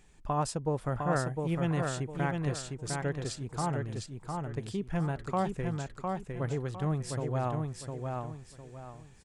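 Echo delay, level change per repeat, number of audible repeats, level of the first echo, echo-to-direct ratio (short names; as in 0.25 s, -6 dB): 0.706 s, -10.0 dB, 4, -4.0 dB, -3.5 dB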